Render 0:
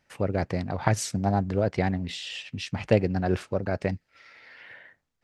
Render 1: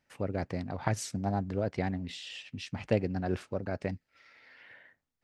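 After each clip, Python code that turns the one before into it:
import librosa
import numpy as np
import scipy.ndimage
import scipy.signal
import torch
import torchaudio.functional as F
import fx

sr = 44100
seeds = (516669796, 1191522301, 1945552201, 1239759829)

y = fx.peak_eq(x, sr, hz=260.0, db=4.0, octaves=0.33)
y = y * 10.0 ** (-7.0 / 20.0)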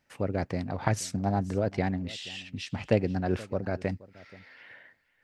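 y = x + 10.0 ** (-20.5 / 20.0) * np.pad(x, (int(478 * sr / 1000.0), 0))[:len(x)]
y = y * 10.0 ** (3.5 / 20.0)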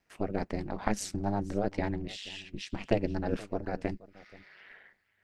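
y = x * np.sin(2.0 * np.pi * 100.0 * np.arange(len(x)) / sr)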